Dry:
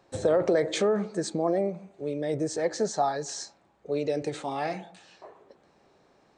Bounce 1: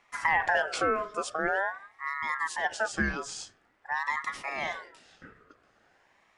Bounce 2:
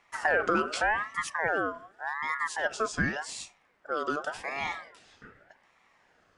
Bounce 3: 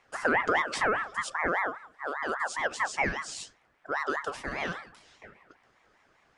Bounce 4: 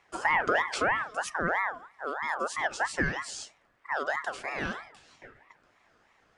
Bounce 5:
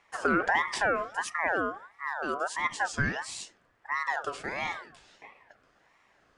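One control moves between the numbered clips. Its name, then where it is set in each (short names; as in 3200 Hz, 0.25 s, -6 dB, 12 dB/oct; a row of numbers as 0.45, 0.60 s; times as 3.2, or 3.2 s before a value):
ring modulator with a swept carrier, at: 0.46, 0.86, 5, 3.1, 1.5 Hz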